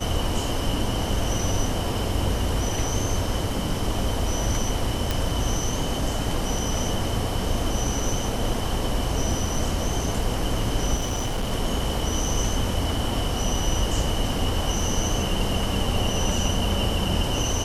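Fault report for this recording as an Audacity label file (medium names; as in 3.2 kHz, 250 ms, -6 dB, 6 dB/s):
5.110000	5.110000	pop
10.960000	11.520000	clipped -22 dBFS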